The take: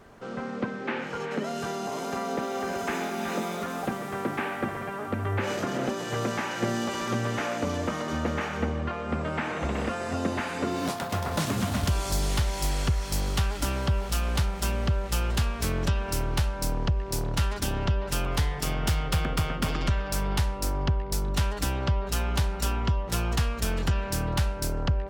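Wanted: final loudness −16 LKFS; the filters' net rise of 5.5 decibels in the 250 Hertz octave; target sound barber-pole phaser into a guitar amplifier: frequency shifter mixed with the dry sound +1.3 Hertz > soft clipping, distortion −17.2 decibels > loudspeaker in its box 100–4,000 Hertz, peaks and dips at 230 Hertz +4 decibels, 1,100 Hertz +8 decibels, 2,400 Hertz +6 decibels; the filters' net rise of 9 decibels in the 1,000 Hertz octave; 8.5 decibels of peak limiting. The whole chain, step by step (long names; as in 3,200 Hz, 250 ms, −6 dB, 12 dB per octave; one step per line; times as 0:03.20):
parametric band 250 Hz +4 dB
parametric band 1,000 Hz +6 dB
brickwall limiter −20.5 dBFS
frequency shifter mixed with the dry sound +1.3 Hz
soft clipping −26.5 dBFS
loudspeaker in its box 100–4,000 Hz, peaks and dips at 230 Hz +4 dB, 1,100 Hz +8 dB, 2,400 Hz +6 dB
level +17 dB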